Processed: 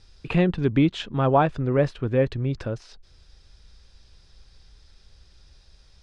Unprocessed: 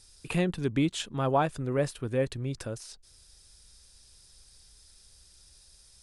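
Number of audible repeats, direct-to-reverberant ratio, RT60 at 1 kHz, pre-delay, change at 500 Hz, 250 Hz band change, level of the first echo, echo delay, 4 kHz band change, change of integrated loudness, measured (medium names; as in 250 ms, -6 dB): no echo, no reverb, no reverb, no reverb, +6.5 dB, +7.0 dB, no echo, no echo, +2.0 dB, +7.0 dB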